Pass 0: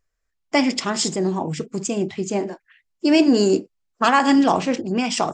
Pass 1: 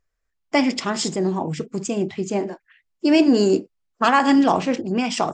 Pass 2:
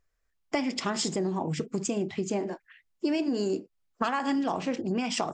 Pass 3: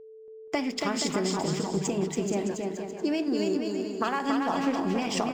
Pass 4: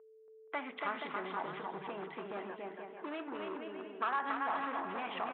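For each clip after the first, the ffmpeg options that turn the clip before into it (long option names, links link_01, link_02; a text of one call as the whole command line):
ffmpeg -i in.wav -af "highshelf=frequency=5700:gain=-6" out.wav
ffmpeg -i in.wav -af "acompressor=threshold=-26dB:ratio=6" out.wav
ffmpeg -i in.wav -filter_complex "[0:a]aeval=exprs='sgn(val(0))*max(abs(val(0))-0.00282,0)':channel_layout=same,aeval=exprs='val(0)+0.00562*sin(2*PI*440*n/s)':channel_layout=same,asplit=2[link_01][link_02];[link_02]aecho=0:1:280|476|613.2|709.2|776.5:0.631|0.398|0.251|0.158|0.1[link_03];[link_01][link_03]amix=inputs=2:normalize=0" out.wav
ffmpeg -i in.wav -af "aresample=8000,asoftclip=type=hard:threshold=-24.5dB,aresample=44100,bandpass=frequency=1300:width_type=q:width=1.5:csg=0" out.wav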